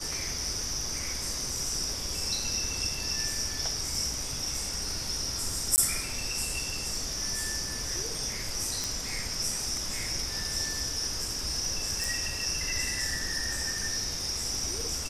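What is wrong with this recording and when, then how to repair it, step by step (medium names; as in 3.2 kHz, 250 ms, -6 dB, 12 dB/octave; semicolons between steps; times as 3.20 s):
5.76–5.78 s: dropout 19 ms
8.84 s: pop
12.04 s: pop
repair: de-click; interpolate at 5.76 s, 19 ms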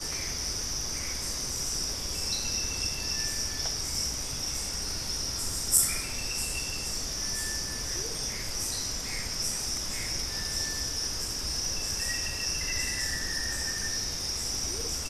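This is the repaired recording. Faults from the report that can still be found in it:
nothing left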